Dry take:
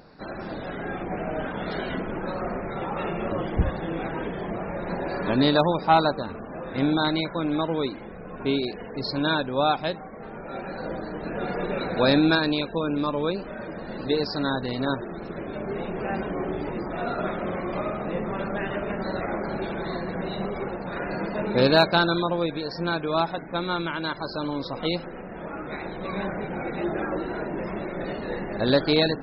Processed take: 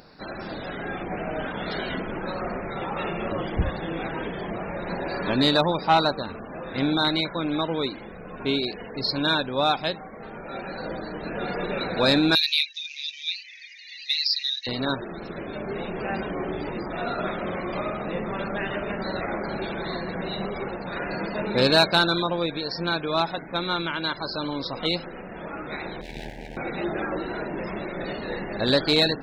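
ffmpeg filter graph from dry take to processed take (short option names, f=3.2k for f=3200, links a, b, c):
-filter_complex "[0:a]asettb=1/sr,asplit=3[a][b][c];[a]atrim=end=12.354[d];[b]atrim=start=12.35:end=14.67,asetpts=PTS-STARTPTS,afade=t=in:d=0.004:c=qsin,afade=t=out:st=2.316:d=0.004:c=qsin,acontrast=29,acrusher=bits=7:mode=log:mix=0:aa=0.000001,asuperpass=centerf=3600:order=20:qfactor=0.81[e];[c]atrim=start=14.666[f];[d][e]acrossfade=d=0.004:c1=hsin:c2=qsin[g];[g][f]acrossfade=d=0.004:c1=qsin:c2=hsin,asettb=1/sr,asplit=3[h][i][j];[h]atrim=end=26.014[k];[i]atrim=start=26.01:end=26.57,asetpts=PTS-STARTPTS,afade=t=in:d=0.004:c=qsin,afade=t=out:st=0.556:d=0.004:c=qsin,aeval=exprs='max(val(0),0)':c=same,asuperstop=centerf=1200:order=12:qfactor=1.7,aeval=exprs='val(0)*sin(2*PI*39*n/s)':c=same[l];[j]atrim=start=26.566[m];[k][l]acrossfade=d=0.004:c1=hsin:c2=qsin[n];[n][m]acrossfade=d=0.004:c1=qsin:c2=hsin,highshelf=f=2.3k:g=9,acontrast=34,volume=-6.5dB"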